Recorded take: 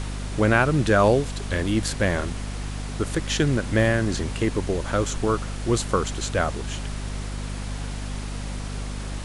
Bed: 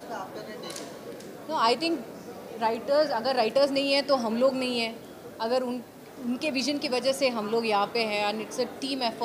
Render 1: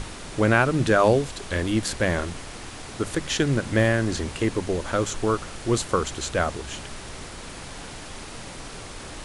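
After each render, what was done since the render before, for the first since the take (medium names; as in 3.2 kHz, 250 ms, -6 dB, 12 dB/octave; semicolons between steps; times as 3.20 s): hum notches 50/100/150/200/250 Hz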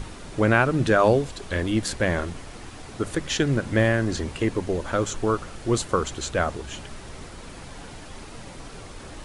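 noise reduction 6 dB, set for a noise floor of -39 dBFS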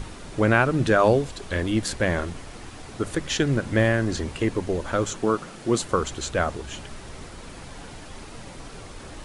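5.14–5.83 s: resonant low shelf 110 Hz -12.5 dB, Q 1.5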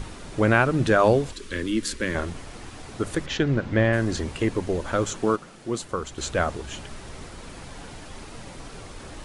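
1.33–2.15 s: static phaser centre 300 Hz, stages 4; 3.26–3.93 s: distance through air 130 m; 5.36–6.18 s: gain -6 dB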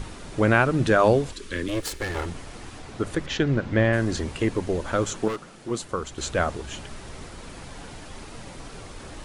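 1.68–2.26 s: comb filter that takes the minimum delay 2.3 ms; 2.78–3.24 s: treble shelf 8 kHz -> 5.5 kHz -7 dB; 5.28–5.71 s: hard clipper -26.5 dBFS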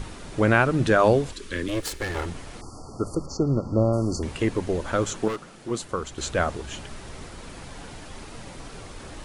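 2.61–4.23 s: brick-wall FIR band-stop 1.4–4.3 kHz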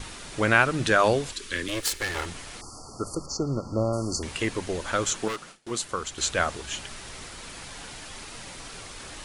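gate with hold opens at -32 dBFS; tilt shelf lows -6 dB, about 1.1 kHz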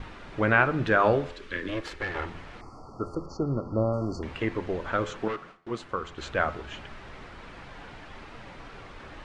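low-pass 2 kHz 12 dB/octave; de-hum 85.77 Hz, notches 30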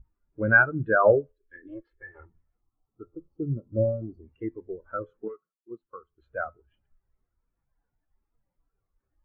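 spectral contrast expander 2.5:1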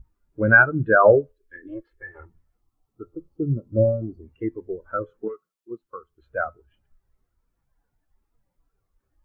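trim +5.5 dB; peak limiter -3 dBFS, peak gain reduction 2 dB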